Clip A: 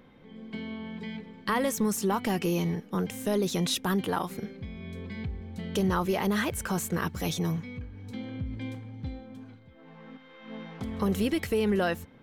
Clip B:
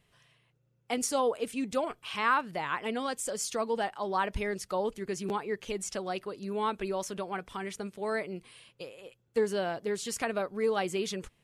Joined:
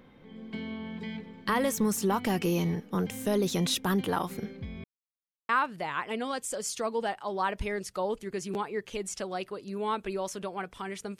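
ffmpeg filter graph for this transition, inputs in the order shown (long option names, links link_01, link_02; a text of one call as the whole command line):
ffmpeg -i cue0.wav -i cue1.wav -filter_complex "[0:a]apad=whole_dur=11.19,atrim=end=11.19,asplit=2[link_01][link_02];[link_01]atrim=end=4.84,asetpts=PTS-STARTPTS,afade=type=out:start_time=4.836:duration=0.004:curve=hsin[link_03];[link_02]atrim=start=4.84:end=5.49,asetpts=PTS-STARTPTS,volume=0[link_04];[1:a]atrim=start=2.24:end=7.94,asetpts=PTS-STARTPTS,afade=type=in:duration=0.004:curve=hsin[link_05];[link_03][link_04][link_05]concat=n=3:v=0:a=1" out.wav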